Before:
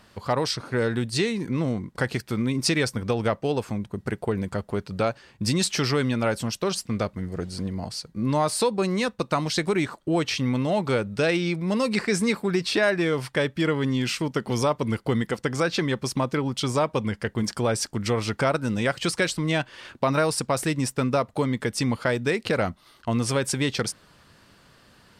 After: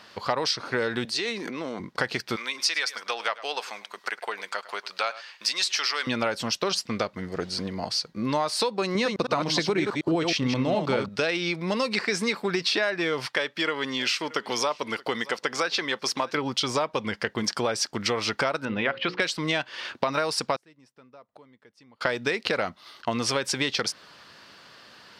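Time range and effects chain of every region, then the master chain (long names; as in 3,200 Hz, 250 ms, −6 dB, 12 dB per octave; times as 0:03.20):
0:01.05–0:01.80: high-pass filter 250 Hz + downward compressor 2 to 1, threshold −35 dBFS + transient designer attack 0 dB, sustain +9 dB
0:02.36–0:06.07: high-pass filter 940 Hz + single-tap delay 103 ms −18.5 dB + one half of a high-frequency compander encoder only
0:08.95–0:11.09: delay that plays each chunk backwards 106 ms, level −5 dB + low-shelf EQ 480 Hz +9 dB
0:13.26–0:16.35: high-pass filter 490 Hz 6 dB per octave + single-tap delay 626 ms −24 dB
0:18.65–0:19.20: low-pass filter 3,000 Hz 24 dB per octave + mains-hum notches 60/120/180/240/300/360/420/480/540 Hz
0:20.56–0:22.01: high-shelf EQ 2,200 Hz −8.5 dB + gate with flip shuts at −30 dBFS, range −30 dB
whole clip: high-pass filter 580 Hz 6 dB per octave; high shelf with overshoot 6,700 Hz −7.5 dB, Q 1.5; downward compressor 4 to 1, threshold −30 dBFS; level +7 dB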